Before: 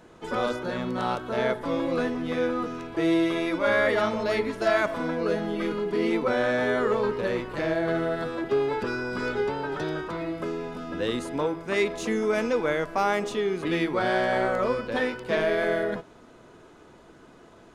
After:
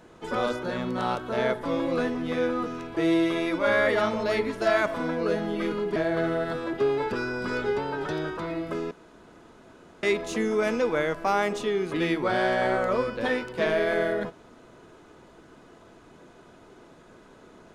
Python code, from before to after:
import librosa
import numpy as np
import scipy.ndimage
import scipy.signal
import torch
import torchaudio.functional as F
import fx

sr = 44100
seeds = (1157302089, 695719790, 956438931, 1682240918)

y = fx.edit(x, sr, fx.cut(start_s=5.96, length_s=1.71),
    fx.room_tone_fill(start_s=10.62, length_s=1.12), tone=tone)